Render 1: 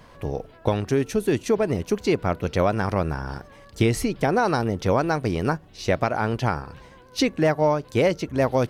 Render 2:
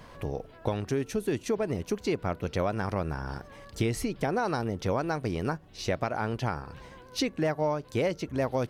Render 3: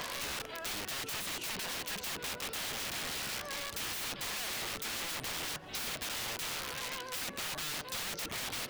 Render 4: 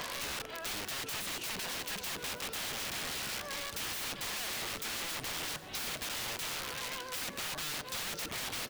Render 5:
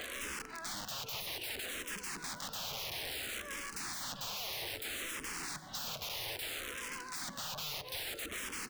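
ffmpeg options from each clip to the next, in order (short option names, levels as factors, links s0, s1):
-af "acompressor=threshold=0.0126:ratio=1.5"
-filter_complex "[0:a]asplit=2[s0][s1];[s1]highpass=f=720:p=1,volume=10,asoftclip=type=tanh:threshold=0.178[s2];[s0][s2]amix=inputs=2:normalize=0,lowpass=f=7300:p=1,volume=0.501,aeval=exprs='(mod(35.5*val(0)+1,2)-1)/35.5':c=same,acrossover=split=2100|4600[s3][s4][s5];[s3]acompressor=threshold=0.00447:ratio=4[s6];[s4]acompressor=threshold=0.00631:ratio=4[s7];[s5]acompressor=threshold=0.00631:ratio=4[s8];[s6][s7][s8]amix=inputs=3:normalize=0,volume=1.5"
-af "aecho=1:1:486|972|1458|1944:0.141|0.0607|0.0261|0.0112"
-filter_complex "[0:a]asplit=2[s0][s1];[s1]afreqshift=-0.61[s2];[s0][s2]amix=inputs=2:normalize=1"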